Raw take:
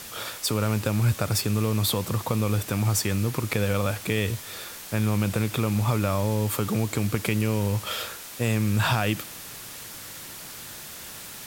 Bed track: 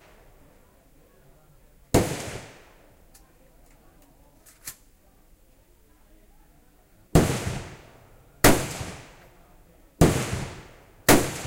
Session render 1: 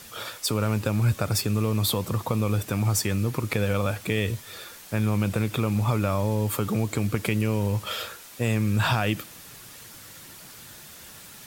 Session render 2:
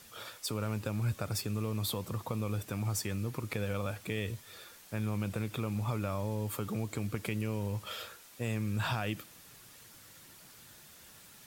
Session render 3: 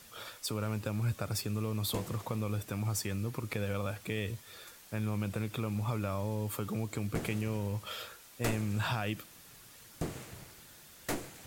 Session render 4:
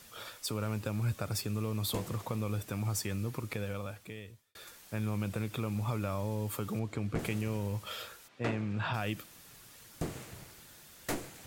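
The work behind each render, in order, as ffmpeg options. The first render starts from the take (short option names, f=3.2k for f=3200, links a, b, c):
-af "afftdn=nr=6:nf=-40"
-af "volume=-10dB"
-filter_complex "[1:a]volume=-19.5dB[a];[0:a][a]amix=inputs=2:normalize=0"
-filter_complex "[0:a]asettb=1/sr,asplit=3[a][b][c];[a]atrim=end=6.794[d];[b]atrim=start=6.79:end=7.19,asetpts=PTS-STARTPTS,afade=t=in:d=0.004:c=qsin,afade=t=out:st=0.396:d=0.004:c=qsin,aemphasis=mode=reproduction:type=50fm[e];[c]atrim=start=7.186[f];[d][e]acrossfade=d=0.004:c1=hsin:c2=qsin[g];[g][f]acrossfade=d=0.004:c1=qsin:c2=hsin,asplit=3[h][i][j];[h]afade=t=out:st=8.27:d=0.02[k];[i]highpass=100,lowpass=3.1k,afade=t=in:st=8.27:d=0.02,afade=t=out:st=8.93:d=0.02[l];[j]afade=t=in:st=8.93:d=0.02[m];[k][l][m]amix=inputs=3:normalize=0,asplit=2[n][o];[n]atrim=end=4.55,asetpts=PTS-STARTPTS,afade=t=out:st=3.35:d=1.2[p];[o]atrim=start=4.55,asetpts=PTS-STARTPTS,afade=t=in:d=0.004:c=hsin[q];[p][q]concat=n=2:v=0:a=1"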